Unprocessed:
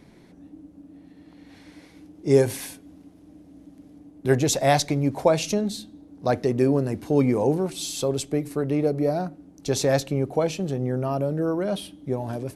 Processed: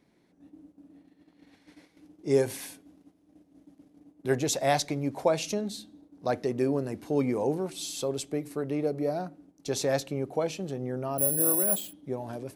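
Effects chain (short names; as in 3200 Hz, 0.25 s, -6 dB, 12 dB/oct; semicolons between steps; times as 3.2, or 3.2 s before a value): gate -47 dBFS, range -8 dB; low shelf 120 Hz -10.5 dB; 11.18–11.93 careless resampling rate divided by 4×, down filtered, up zero stuff; gain -5 dB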